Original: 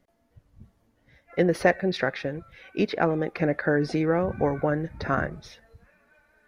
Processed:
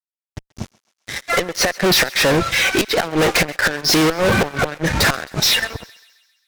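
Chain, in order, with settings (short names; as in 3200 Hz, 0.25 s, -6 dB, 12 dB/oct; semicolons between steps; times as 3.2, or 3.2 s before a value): low-pass sweep 6000 Hz -> 190 Hz, 5.43–6.04; flipped gate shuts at -14 dBFS, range -31 dB; tilt +2.5 dB/oct; fuzz box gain 48 dB, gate -57 dBFS; on a send: thinning echo 0.133 s, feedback 56%, high-pass 790 Hz, level -21 dB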